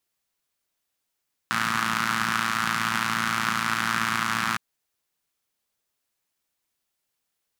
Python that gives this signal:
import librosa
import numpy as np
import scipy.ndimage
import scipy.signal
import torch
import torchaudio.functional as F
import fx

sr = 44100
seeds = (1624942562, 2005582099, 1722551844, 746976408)

y = fx.engine_four(sr, seeds[0], length_s=3.06, rpm=3400, resonances_hz=(190.0, 1300.0))